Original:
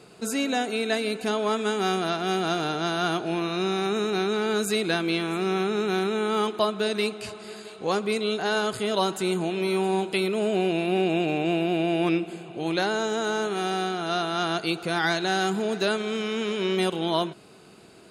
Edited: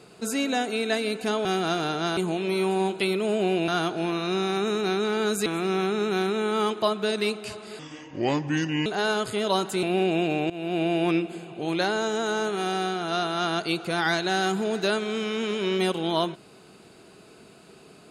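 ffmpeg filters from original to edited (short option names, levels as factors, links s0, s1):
-filter_complex "[0:a]asplit=9[s0][s1][s2][s3][s4][s5][s6][s7][s8];[s0]atrim=end=1.452[s9];[s1]atrim=start=2.248:end=2.972[s10];[s2]atrim=start=9.298:end=10.812[s11];[s3]atrim=start=2.968:end=4.752[s12];[s4]atrim=start=5.228:end=7.564[s13];[s5]atrim=start=7.56:end=8.33,asetpts=PTS-STARTPTS,asetrate=31752,aresample=44100,atrim=end_sample=47162,asetpts=PTS-STARTPTS[s14];[s6]atrim=start=8.326:end=9.302[s15];[s7]atrim=start=10.808:end=11.48,asetpts=PTS-STARTPTS,afade=t=out:st=0.668:d=0.004:c=hsin:silence=0.1[s16];[s8]atrim=start=11.48,asetpts=PTS-STARTPTS,afade=t=in:d=0.31:silence=0.1[s17];[s9][s10]acrossfade=d=0.004:c1=hsin:c2=hsin[s18];[s18][s11]acrossfade=d=0.004:c1=hsin:c2=hsin[s19];[s19][s12]acrossfade=d=0.004:c1=hsin:c2=hsin[s20];[s20][s13]acrossfade=d=0.004:c1=hsin:c2=hsin[s21];[s21][s14]acrossfade=d=0.004:c1=hsin:c2=hsin[s22];[s22][s15]acrossfade=d=0.004:c1=hsin:c2=hsin[s23];[s16][s17]concat=n=2:v=0:a=1[s24];[s23][s24]acrossfade=d=0.004:c1=hsin:c2=hsin"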